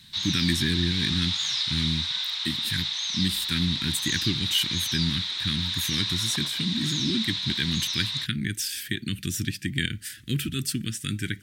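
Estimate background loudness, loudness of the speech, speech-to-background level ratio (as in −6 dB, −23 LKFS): −26.5 LKFS, −29.0 LKFS, −2.5 dB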